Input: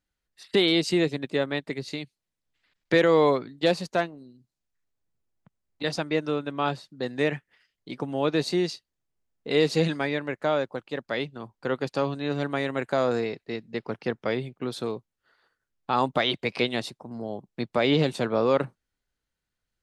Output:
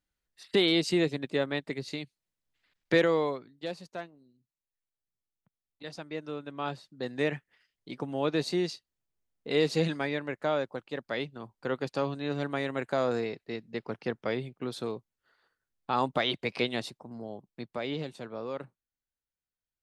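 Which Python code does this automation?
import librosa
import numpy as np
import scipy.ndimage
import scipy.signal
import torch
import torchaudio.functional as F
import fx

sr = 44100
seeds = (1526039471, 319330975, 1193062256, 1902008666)

y = fx.gain(x, sr, db=fx.line((2.99, -3.0), (3.43, -14.0), (5.84, -14.0), (7.13, -4.0), (16.96, -4.0), (18.15, -14.5)))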